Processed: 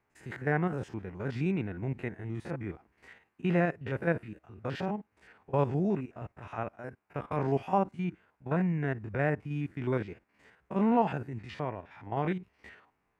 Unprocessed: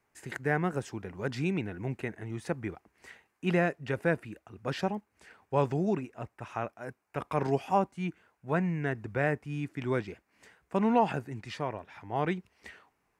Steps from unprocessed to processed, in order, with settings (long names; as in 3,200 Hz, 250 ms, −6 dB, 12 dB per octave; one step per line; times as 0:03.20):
spectrum averaged block by block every 50 ms
bass and treble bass +2 dB, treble −10 dB